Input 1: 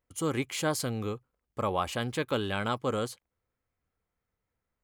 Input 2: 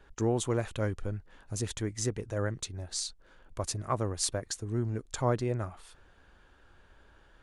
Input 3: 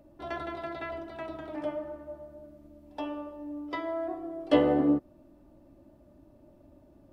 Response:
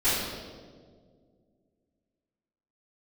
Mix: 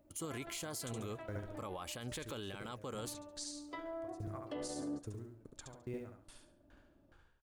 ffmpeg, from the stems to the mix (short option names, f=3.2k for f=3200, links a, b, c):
-filter_complex "[0:a]highshelf=f=3.9k:g=9,volume=-4.5dB[a];[1:a]acompressor=threshold=-30dB:ratio=4,acrusher=bits=9:mode=log:mix=0:aa=0.000001,aeval=exprs='val(0)*pow(10,-33*if(lt(mod(2.4*n/s,1),2*abs(2.4)/1000),1-mod(2.4*n/s,1)/(2*abs(2.4)/1000),(mod(2.4*n/s,1)-2*abs(2.4)/1000)/(1-2*abs(2.4)/1000))/20)':c=same,adelay=450,volume=-2.5dB,asplit=2[b][c];[c]volume=-4.5dB[d];[2:a]volume=-11dB,asplit=2[e][f];[f]volume=-21dB[g];[a][e]amix=inputs=2:normalize=0,alimiter=level_in=0.5dB:limit=-24dB:level=0:latency=1:release=411,volume=-0.5dB,volume=0dB[h];[d][g]amix=inputs=2:normalize=0,aecho=0:1:70|140|210|280:1|0.31|0.0961|0.0298[i];[b][h][i]amix=inputs=3:normalize=0,alimiter=level_in=9.5dB:limit=-24dB:level=0:latency=1:release=52,volume=-9.5dB"